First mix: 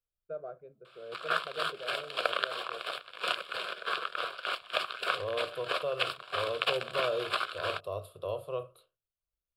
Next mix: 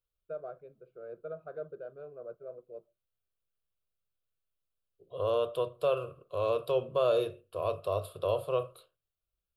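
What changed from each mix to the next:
second voice +5.5 dB; background: muted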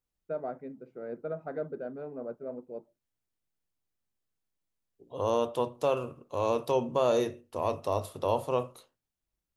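first voice +4.0 dB; master: remove static phaser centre 1.3 kHz, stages 8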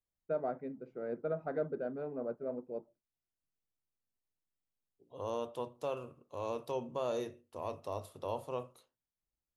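second voice -10.0 dB

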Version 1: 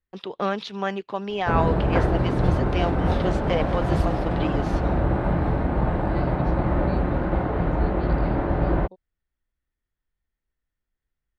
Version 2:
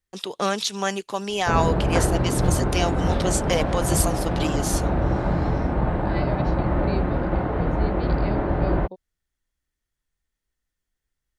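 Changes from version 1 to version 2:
first voice: remove distance through air 340 m; second voice +8.0 dB

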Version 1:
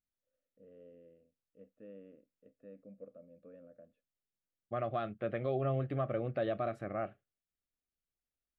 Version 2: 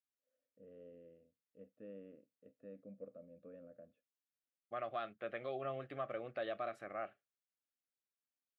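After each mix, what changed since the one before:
second voice: add high-pass 1.1 kHz 6 dB/octave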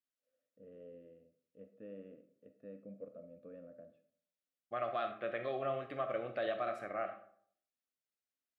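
reverb: on, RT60 0.60 s

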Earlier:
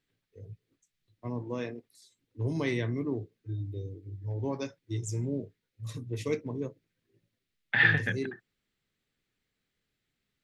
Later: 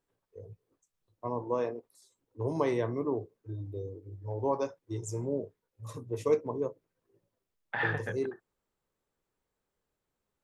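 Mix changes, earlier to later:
second voice -5.0 dB; master: add ten-band graphic EQ 125 Hz -5 dB, 250 Hz -4 dB, 500 Hz +6 dB, 1 kHz +11 dB, 2 kHz -8 dB, 4 kHz -7 dB

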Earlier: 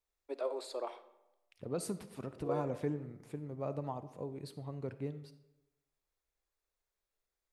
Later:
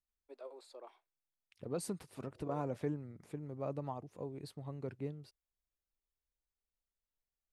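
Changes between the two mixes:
first voice -11.5 dB; reverb: off

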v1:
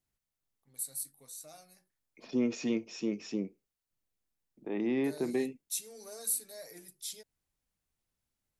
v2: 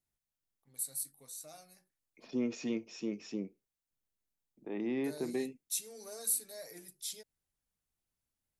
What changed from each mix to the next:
second voice -4.0 dB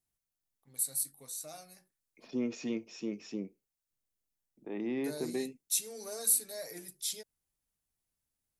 first voice +5.0 dB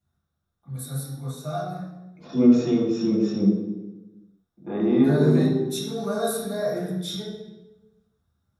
first voice: add tone controls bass +6 dB, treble -10 dB; reverb: on, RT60 1.1 s

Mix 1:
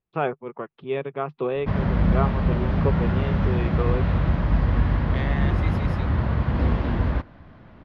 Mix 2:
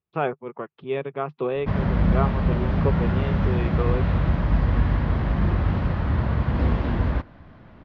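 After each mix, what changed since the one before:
second voice: muted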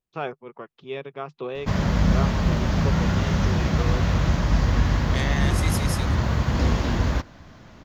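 first voice -7.0 dB; second voice: unmuted; master: remove distance through air 400 m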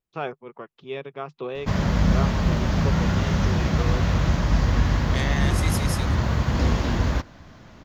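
no change

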